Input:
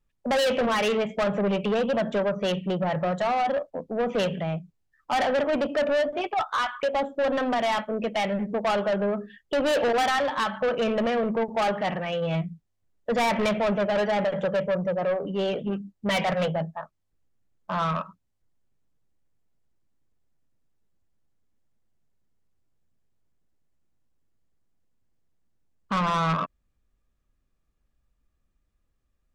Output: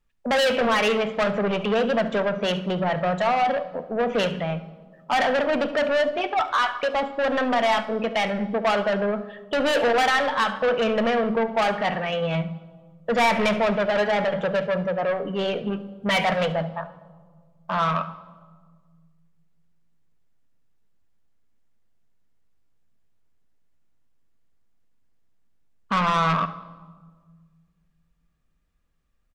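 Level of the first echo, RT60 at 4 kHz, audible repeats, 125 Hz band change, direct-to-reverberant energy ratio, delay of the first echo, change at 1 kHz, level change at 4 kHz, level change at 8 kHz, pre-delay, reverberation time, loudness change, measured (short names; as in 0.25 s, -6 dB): -18.0 dB, 1.0 s, 1, +1.0 dB, 10.5 dB, 71 ms, +3.5 dB, +4.0 dB, +1.5 dB, 4 ms, 1.6 s, +2.5 dB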